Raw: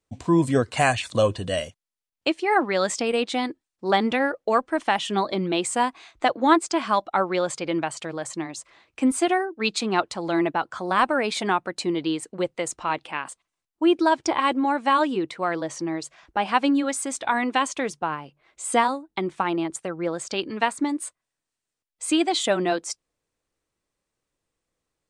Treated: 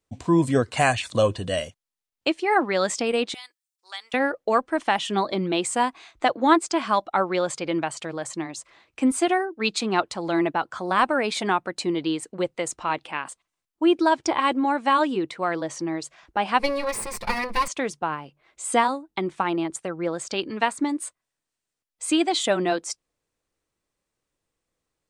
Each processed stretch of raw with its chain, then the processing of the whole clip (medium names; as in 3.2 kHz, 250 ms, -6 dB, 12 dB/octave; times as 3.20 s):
3.34–4.14 s: high-pass 890 Hz + differentiator
16.59–17.68 s: comb filter that takes the minimum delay 5.7 ms + rippled EQ curve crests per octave 0.89, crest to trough 10 dB
whole clip: none